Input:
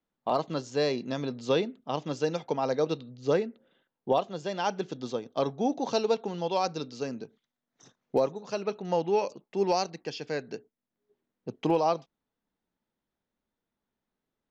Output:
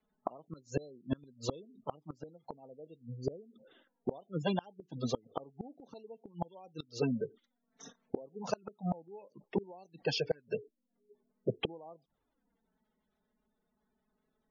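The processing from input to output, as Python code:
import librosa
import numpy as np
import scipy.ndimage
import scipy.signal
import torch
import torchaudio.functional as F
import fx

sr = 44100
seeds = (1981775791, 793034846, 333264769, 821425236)

y = fx.env_flanger(x, sr, rest_ms=4.7, full_db=-24.0)
y = fx.spec_gate(y, sr, threshold_db=-20, keep='strong')
y = fx.gate_flip(y, sr, shuts_db=-28.0, range_db=-31)
y = F.gain(torch.from_numpy(y), 8.5).numpy()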